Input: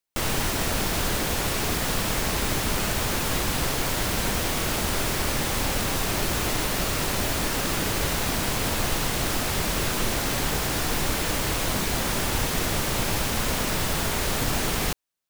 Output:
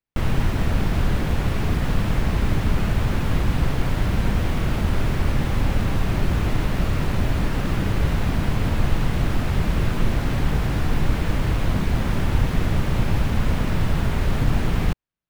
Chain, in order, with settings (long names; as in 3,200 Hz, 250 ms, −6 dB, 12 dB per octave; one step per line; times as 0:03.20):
bass and treble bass +12 dB, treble −14 dB
level −2 dB